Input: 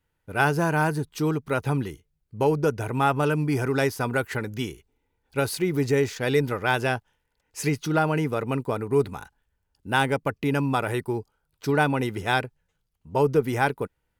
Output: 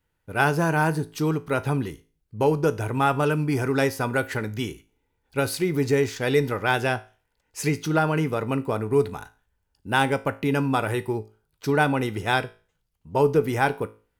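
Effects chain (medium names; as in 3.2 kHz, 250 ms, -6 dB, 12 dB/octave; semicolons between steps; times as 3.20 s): feedback comb 54 Hz, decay 0.36 s, harmonics all, mix 50%; trim +4.5 dB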